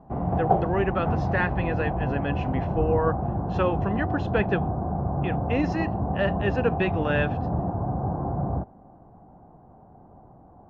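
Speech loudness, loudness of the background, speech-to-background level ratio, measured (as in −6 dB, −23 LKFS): −28.5 LKFS, −28.0 LKFS, −0.5 dB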